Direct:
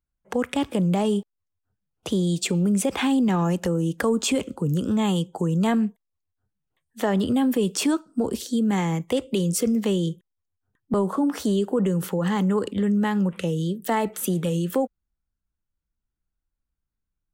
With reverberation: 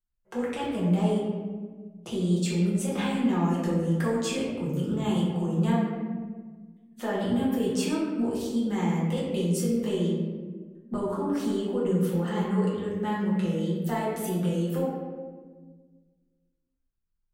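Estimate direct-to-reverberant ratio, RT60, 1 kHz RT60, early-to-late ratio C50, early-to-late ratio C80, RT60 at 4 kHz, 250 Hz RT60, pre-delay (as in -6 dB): -7.5 dB, 1.5 s, 1.3 s, -0.5 dB, 2.0 dB, 0.80 s, 2.1 s, 5 ms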